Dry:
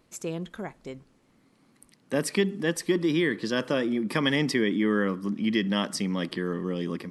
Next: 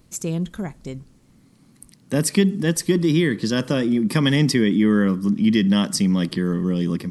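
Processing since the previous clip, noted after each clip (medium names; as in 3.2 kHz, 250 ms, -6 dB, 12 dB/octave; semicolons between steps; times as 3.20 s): tone controls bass +13 dB, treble +9 dB; trim +1.5 dB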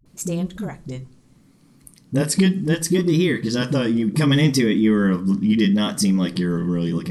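phase dispersion highs, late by 51 ms, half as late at 330 Hz; vibrato 0.71 Hz 62 cents; simulated room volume 130 m³, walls furnished, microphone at 0.38 m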